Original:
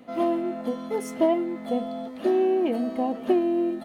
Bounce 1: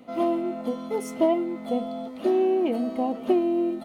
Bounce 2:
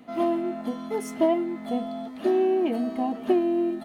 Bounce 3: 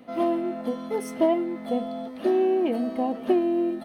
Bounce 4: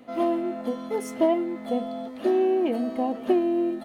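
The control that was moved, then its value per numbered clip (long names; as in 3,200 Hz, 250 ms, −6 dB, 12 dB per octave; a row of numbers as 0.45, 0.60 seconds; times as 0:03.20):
notch filter, centre frequency: 1,700, 520, 7,000, 180 Hertz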